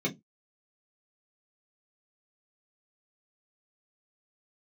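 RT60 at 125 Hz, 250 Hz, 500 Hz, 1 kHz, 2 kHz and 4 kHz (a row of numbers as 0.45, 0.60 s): 0.25, 0.25, 0.20, 0.10, 0.15, 0.15 s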